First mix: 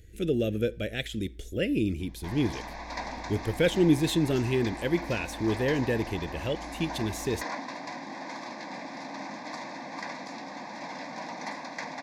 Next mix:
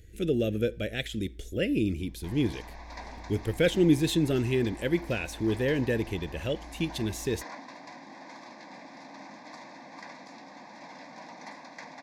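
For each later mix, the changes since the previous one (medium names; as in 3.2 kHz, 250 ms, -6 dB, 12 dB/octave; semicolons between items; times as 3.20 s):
background -7.5 dB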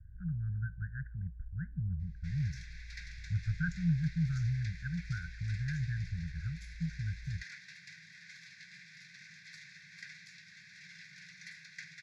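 speech: add steep low-pass 1.6 kHz 96 dB/octave; master: add Chebyshev band-stop 170–1500 Hz, order 5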